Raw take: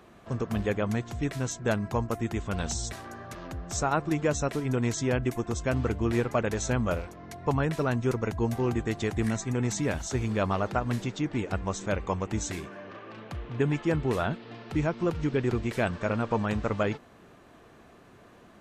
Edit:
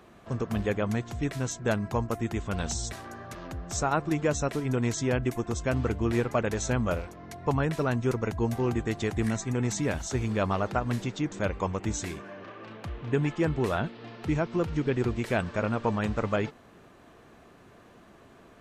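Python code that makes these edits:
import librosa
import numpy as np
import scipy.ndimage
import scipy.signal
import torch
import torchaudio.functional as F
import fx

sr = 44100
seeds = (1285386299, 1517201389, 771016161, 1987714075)

y = fx.edit(x, sr, fx.cut(start_s=11.32, length_s=0.47), tone=tone)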